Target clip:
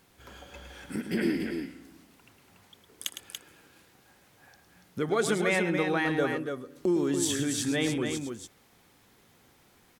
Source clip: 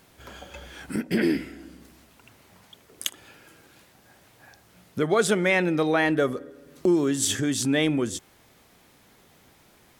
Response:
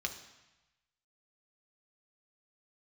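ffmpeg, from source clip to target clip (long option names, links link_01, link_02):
-filter_complex "[0:a]bandreject=frequency=630:width=12,asplit=2[link_01][link_02];[link_02]aecho=0:1:107.9|285.7:0.355|0.501[link_03];[link_01][link_03]amix=inputs=2:normalize=0,volume=-5.5dB"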